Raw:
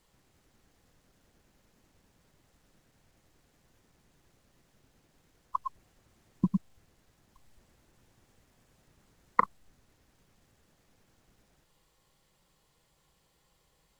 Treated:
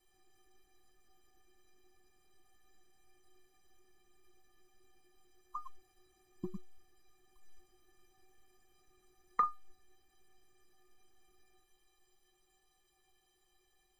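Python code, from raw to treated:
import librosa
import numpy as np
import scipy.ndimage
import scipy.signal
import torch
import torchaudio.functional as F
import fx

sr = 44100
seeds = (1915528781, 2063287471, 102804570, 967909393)

y = fx.stiff_resonator(x, sr, f0_hz=360.0, decay_s=0.26, stiffness=0.03)
y = y * 10.0 ** (11.0 / 20.0)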